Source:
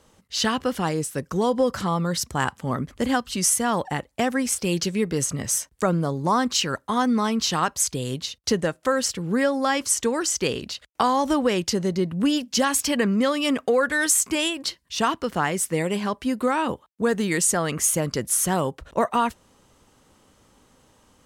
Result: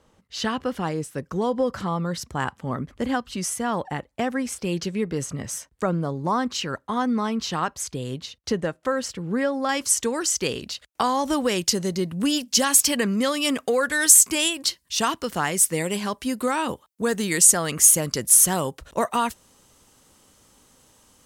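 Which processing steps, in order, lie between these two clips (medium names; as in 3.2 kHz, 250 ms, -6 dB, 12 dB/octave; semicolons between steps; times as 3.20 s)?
treble shelf 4.2 kHz -8 dB, from 9.69 s +4.5 dB, from 11.33 s +11.5 dB; trim -2 dB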